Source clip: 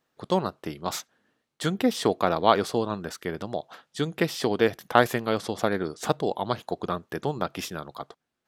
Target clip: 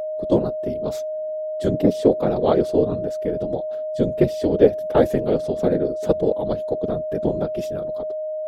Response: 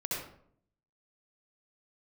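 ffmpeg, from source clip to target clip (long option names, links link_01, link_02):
-af "lowshelf=frequency=710:width_type=q:width=1.5:gain=12.5,afftfilt=real='hypot(re,im)*cos(2*PI*random(0))':imag='hypot(re,im)*sin(2*PI*random(1))':win_size=512:overlap=0.75,aeval=exprs='val(0)+0.0708*sin(2*PI*620*n/s)':channel_layout=same,volume=-1.5dB"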